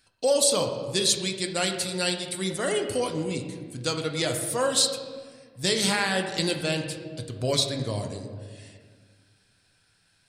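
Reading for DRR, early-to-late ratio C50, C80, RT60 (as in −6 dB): 3.5 dB, 6.5 dB, 8.0 dB, 1.7 s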